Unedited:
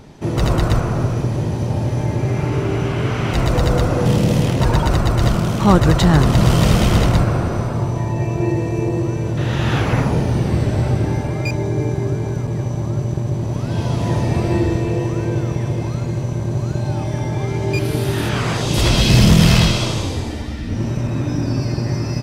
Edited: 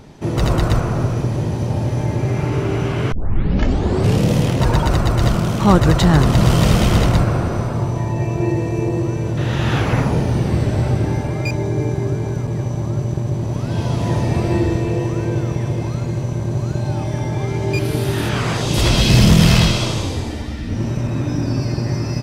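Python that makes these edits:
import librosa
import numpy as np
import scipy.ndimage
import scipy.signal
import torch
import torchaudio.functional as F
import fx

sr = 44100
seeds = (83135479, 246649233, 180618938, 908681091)

y = fx.edit(x, sr, fx.tape_start(start_s=3.12, length_s=1.12), tone=tone)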